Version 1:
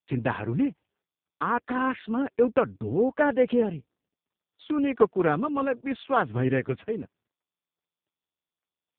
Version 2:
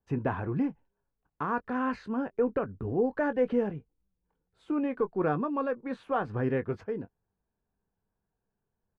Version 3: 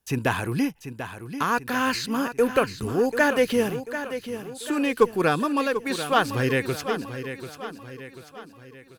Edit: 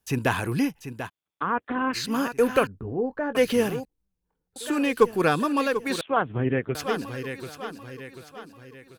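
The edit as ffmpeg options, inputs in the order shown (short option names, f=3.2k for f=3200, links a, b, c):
-filter_complex "[0:a]asplit=2[a][b];[1:a]asplit=2[c][d];[2:a]asplit=5[e][f][g][h][i];[e]atrim=end=1.1[j];[a]atrim=start=1.06:end=1.97[k];[f]atrim=start=1.93:end=2.672[l];[c]atrim=start=2.668:end=3.352[m];[g]atrim=start=3.348:end=3.852[n];[d]atrim=start=3.848:end=4.562[o];[h]atrim=start=4.558:end=6.012[p];[b]atrim=start=6.008:end=6.752[q];[i]atrim=start=6.748[r];[j][k]acrossfade=d=0.04:c1=tri:c2=tri[s];[s][l]acrossfade=d=0.04:c1=tri:c2=tri[t];[t][m]acrossfade=d=0.004:c1=hsin:c2=hsin[u];[u][n]acrossfade=d=0.004:c1=hsin:c2=hsin[v];[v][o]acrossfade=d=0.004:c1=hsin:c2=hsin[w];[w][p]acrossfade=d=0.004:c1=hsin:c2=hsin[x];[x][q]acrossfade=d=0.004:c1=hsin:c2=hsin[y];[y][r]acrossfade=d=0.004:c1=hsin:c2=hsin"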